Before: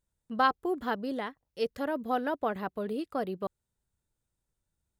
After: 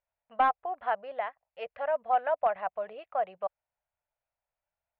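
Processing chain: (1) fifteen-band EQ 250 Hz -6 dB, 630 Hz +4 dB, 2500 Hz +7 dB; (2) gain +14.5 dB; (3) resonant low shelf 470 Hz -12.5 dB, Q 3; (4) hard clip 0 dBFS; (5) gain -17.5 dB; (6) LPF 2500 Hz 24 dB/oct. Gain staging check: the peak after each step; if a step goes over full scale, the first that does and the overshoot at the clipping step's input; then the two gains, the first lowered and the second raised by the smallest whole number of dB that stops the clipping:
-10.5, +4.0, +7.0, 0.0, -17.5, -16.0 dBFS; step 2, 7.0 dB; step 2 +7.5 dB, step 5 -10.5 dB

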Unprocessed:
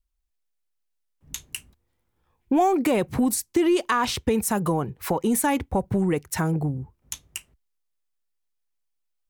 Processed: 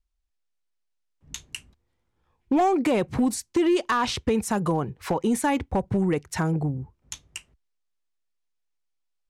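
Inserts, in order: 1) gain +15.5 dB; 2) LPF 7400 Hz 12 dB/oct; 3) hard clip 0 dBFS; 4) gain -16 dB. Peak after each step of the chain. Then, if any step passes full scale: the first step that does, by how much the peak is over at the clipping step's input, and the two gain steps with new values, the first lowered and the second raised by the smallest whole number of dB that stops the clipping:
+5.0, +5.0, 0.0, -16.0 dBFS; step 1, 5.0 dB; step 1 +10.5 dB, step 4 -11 dB

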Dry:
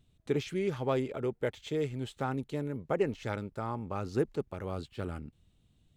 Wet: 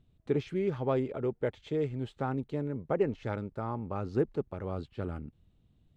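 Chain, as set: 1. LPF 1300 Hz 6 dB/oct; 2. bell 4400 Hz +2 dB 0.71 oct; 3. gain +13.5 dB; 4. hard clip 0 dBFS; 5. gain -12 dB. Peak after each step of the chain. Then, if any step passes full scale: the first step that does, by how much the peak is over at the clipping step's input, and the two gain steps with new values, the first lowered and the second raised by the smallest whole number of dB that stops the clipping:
-17.5, -17.5, -4.0, -4.0, -16.0 dBFS; no overload

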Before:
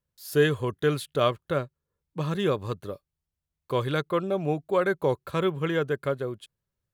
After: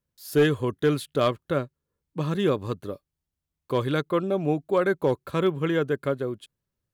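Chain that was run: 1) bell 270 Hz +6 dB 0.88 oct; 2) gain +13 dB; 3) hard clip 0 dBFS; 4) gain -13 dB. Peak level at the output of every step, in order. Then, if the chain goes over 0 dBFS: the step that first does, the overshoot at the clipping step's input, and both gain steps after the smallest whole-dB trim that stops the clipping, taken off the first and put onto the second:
-8.5, +4.5, 0.0, -13.0 dBFS; step 2, 4.5 dB; step 2 +8 dB, step 4 -8 dB

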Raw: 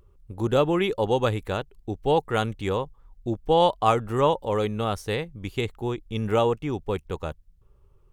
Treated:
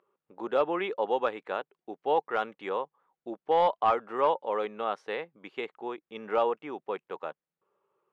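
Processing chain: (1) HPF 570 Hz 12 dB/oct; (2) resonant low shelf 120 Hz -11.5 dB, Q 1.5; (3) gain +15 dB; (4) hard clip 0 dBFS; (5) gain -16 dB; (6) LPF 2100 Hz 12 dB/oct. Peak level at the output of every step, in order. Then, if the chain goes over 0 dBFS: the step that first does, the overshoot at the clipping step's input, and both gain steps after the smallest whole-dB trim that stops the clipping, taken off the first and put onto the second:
-7.5, -7.0, +8.0, 0.0, -16.0, -15.5 dBFS; step 3, 8.0 dB; step 3 +7 dB, step 5 -8 dB

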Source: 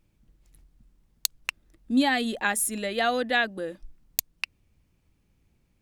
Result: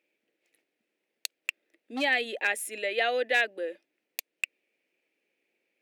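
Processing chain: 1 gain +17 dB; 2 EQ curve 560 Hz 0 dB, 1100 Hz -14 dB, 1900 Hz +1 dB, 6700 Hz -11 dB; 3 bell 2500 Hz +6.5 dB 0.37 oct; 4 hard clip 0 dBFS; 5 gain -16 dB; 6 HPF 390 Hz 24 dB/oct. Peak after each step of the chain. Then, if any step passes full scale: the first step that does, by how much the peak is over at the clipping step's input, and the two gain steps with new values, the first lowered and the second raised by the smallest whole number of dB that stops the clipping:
+12.5, +6.0, +9.5, 0.0, -16.0, -12.5 dBFS; step 1, 9.5 dB; step 1 +7 dB, step 5 -6 dB

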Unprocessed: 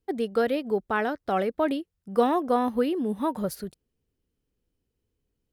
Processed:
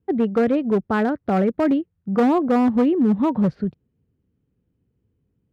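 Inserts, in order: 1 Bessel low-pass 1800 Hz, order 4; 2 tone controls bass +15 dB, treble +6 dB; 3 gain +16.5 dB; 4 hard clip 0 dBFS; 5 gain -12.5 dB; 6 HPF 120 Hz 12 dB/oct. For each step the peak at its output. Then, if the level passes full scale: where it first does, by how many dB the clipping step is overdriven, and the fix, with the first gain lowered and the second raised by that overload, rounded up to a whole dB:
-11.0, -7.0, +9.5, 0.0, -12.5, -8.5 dBFS; step 3, 9.5 dB; step 3 +6.5 dB, step 5 -2.5 dB

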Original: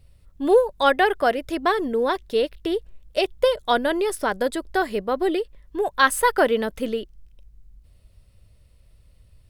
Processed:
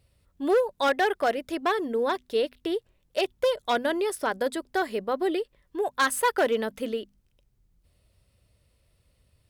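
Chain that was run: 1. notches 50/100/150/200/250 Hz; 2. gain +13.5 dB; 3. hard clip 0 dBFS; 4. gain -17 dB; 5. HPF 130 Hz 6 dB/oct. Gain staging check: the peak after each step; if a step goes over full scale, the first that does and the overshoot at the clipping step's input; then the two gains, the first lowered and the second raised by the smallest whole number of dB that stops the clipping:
-4.0, +9.5, 0.0, -17.0, -14.5 dBFS; step 2, 9.5 dB; step 2 +3.5 dB, step 4 -7 dB

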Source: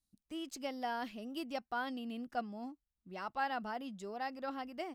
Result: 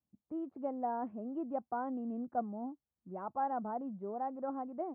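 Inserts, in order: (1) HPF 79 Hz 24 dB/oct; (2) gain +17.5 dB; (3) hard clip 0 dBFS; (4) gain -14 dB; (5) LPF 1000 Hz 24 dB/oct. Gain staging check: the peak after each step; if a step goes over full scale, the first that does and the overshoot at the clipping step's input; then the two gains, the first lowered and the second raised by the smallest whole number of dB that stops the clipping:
-23.5, -6.0, -6.0, -20.0, -23.5 dBFS; no overload

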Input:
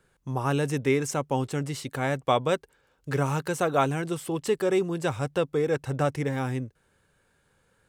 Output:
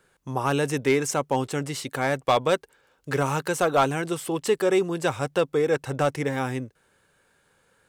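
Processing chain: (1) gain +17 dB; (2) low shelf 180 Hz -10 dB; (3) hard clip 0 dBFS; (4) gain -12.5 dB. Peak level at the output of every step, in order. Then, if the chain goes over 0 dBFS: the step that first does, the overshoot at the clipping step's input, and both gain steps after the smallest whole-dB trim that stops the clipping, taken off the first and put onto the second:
+7.5, +7.0, 0.0, -12.5 dBFS; step 1, 7.0 dB; step 1 +10 dB, step 4 -5.5 dB

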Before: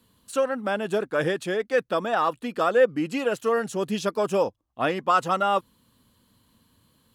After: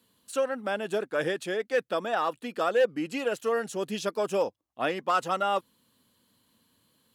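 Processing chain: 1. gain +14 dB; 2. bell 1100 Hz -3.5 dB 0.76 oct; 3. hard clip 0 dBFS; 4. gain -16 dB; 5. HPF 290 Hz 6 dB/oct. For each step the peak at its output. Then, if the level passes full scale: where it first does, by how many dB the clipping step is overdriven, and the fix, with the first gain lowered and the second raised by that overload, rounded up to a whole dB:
+5.5, +5.0, 0.0, -16.0, -14.0 dBFS; step 1, 5.0 dB; step 1 +9 dB, step 4 -11 dB

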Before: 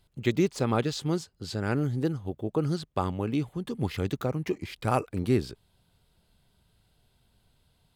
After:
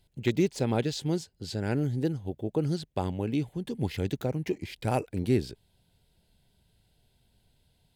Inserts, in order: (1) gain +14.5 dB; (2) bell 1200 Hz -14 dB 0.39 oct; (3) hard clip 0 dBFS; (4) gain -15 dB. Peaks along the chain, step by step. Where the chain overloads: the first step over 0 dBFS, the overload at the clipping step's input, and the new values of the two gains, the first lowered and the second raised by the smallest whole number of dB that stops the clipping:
+3.0, +3.0, 0.0, -15.0 dBFS; step 1, 3.0 dB; step 1 +11.5 dB, step 4 -12 dB

